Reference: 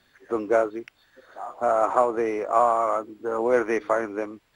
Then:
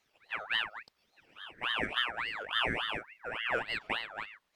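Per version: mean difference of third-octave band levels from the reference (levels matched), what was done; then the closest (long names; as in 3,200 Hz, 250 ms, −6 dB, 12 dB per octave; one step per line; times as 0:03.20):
10.5 dB: ring modulator whose carrier an LFO sweeps 1,700 Hz, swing 45%, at 3.5 Hz
level −9 dB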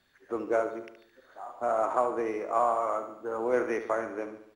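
2.0 dB: repeating echo 72 ms, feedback 52%, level −10 dB
level −6.5 dB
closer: second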